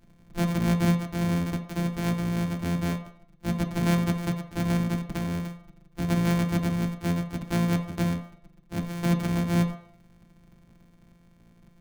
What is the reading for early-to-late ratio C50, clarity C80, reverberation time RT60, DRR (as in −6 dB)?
9.5 dB, 13.0 dB, 0.65 s, 2.5 dB